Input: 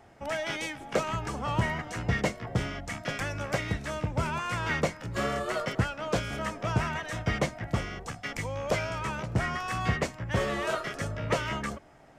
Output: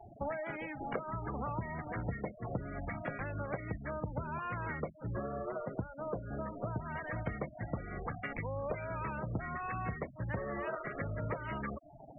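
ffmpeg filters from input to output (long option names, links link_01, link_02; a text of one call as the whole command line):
ffmpeg -i in.wav -af "acompressor=threshold=-40dB:ratio=12,asetnsamples=nb_out_samples=441:pad=0,asendcmd='5.16 lowpass f 1100;6.86 lowpass f 2100',lowpass=1800,afftfilt=real='re*gte(hypot(re,im),0.00562)':imag='im*gte(hypot(re,im),0.00562)':win_size=1024:overlap=0.75,volume=6dB" out.wav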